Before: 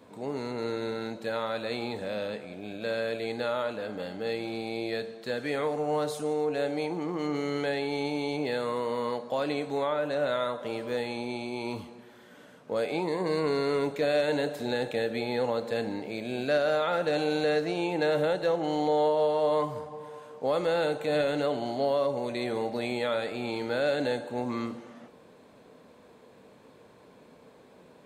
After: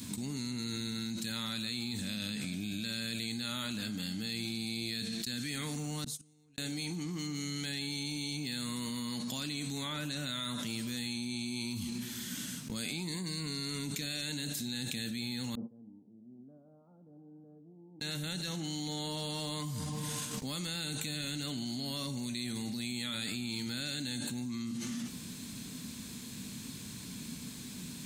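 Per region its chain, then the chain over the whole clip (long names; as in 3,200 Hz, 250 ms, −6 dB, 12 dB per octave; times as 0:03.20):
0:06.04–0:06.58: low-shelf EQ 190 Hz +8.5 dB + gate with flip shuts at −26 dBFS, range −42 dB
0:15.55–0:18.01: Gaussian smoothing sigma 15 samples + first difference
whole clip: noise gate −43 dBFS, range −19 dB; drawn EQ curve 240 Hz 0 dB, 510 Hz −28 dB, 6,300 Hz +11 dB; envelope flattener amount 100%; level −5.5 dB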